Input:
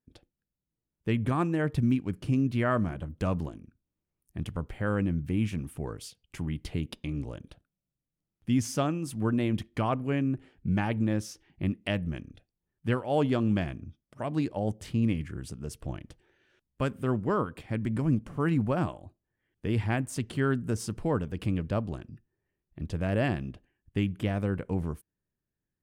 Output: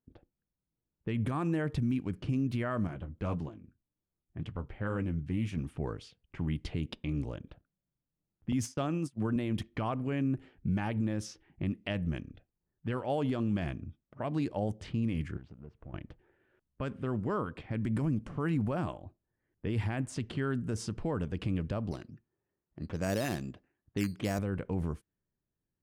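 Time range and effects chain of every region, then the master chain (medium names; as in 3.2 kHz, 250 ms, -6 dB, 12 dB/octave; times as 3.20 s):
2.87–5.57 s: flange 1.9 Hz, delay 6.3 ms, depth 5.4 ms, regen -49% + loudspeaker Doppler distortion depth 0.12 ms
8.52–9.36 s: high-pass 79 Hz 24 dB/octave + gate -36 dBFS, range -27 dB
15.37–15.94 s: companding laws mixed up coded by A + compression 2:1, threshold -50 dBFS + distance through air 140 m
21.91–24.39 s: high-pass 170 Hz 6 dB/octave + decimation with a swept rate 8×, swing 60% 2.4 Hz
whole clip: peak limiter -22.5 dBFS; level-controlled noise filter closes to 1.3 kHz, open at -27.5 dBFS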